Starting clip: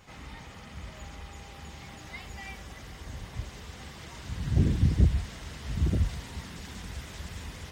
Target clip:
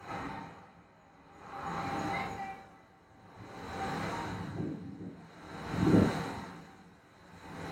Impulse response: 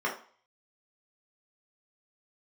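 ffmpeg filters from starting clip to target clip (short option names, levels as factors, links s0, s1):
-filter_complex "[0:a]asettb=1/sr,asplit=3[s0][s1][s2];[s0]atrim=end=1.404[s3];[s1]atrim=start=1.4:end=1.8,asetpts=PTS-STARTPTS,afade=t=in:d=0.004:c=qsin,afade=t=out:st=0.396:d=0.004:c=qsin,equalizer=f=1200:t=o:w=0.81:g=8.5[s4];[s2]atrim=start=1.796[s5];[s3][s4]acrossfade=d=0.004:c1=hsin:c2=qsin[s6];[s6][s5]acrossfade=d=0.004:c1=qsin:c2=hsin,acrossover=split=140|1100[s7][s8][s9];[s7]acompressor=threshold=0.01:ratio=6[s10];[s10][s8][s9]amix=inputs=3:normalize=0[s11];[1:a]atrim=start_sample=2205,asetrate=32193,aresample=44100[s12];[s11][s12]afir=irnorm=-1:irlink=0,aeval=exprs='val(0)*pow(10,-24*(0.5-0.5*cos(2*PI*0.5*n/s))/20)':c=same"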